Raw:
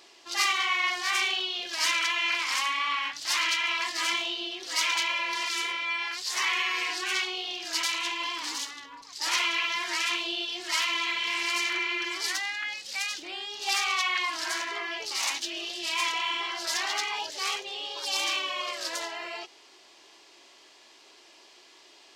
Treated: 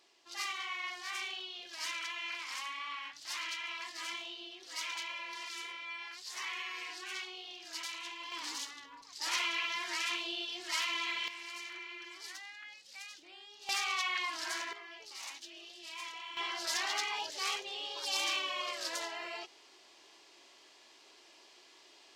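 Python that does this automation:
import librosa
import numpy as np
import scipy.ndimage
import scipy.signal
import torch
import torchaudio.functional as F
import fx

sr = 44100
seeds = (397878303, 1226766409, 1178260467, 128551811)

y = fx.gain(x, sr, db=fx.steps((0.0, -13.0), (8.32, -7.0), (11.28, -16.5), (13.69, -7.0), (14.73, -16.0), (16.37, -5.0)))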